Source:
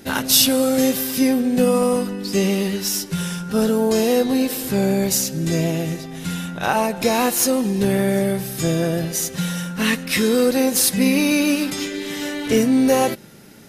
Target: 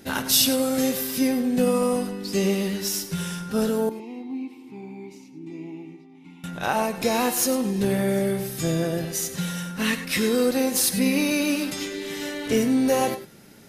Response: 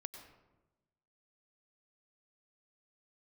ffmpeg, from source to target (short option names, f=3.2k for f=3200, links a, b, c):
-filter_complex "[0:a]asettb=1/sr,asplit=3[a][b][c];[a]atrim=end=3.894[d];[b]atrim=start=3.89:end=6.44,asetpts=PTS-STARTPTS,afade=t=in:d=0.004:c=qsin,afade=t=out:st=2.546:d=0.004:c=qsin,asplit=3[e][f][g];[e]bandpass=f=300:t=q:w=8,volume=0dB[h];[f]bandpass=f=870:t=q:w=8,volume=-6dB[i];[g]bandpass=f=2.24k:t=q:w=8,volume=-9dB[j];[h][i][j]amix=inputs=3:normalize=0[k];[c]atrim=start=6.436[l];[d][k]acrossfade=d=0.004:c1=hsin:c2=qsin[m];[m][l]acrossfade=d=0.004:c1=qsin:c2=hsin[n];[1:a]atrim=start_sample=2205,afade=t=out:st=0.16:d=0.01,atrim=end_sample=7497[o];[n][o]afir=irnorm=-1:irlink=0"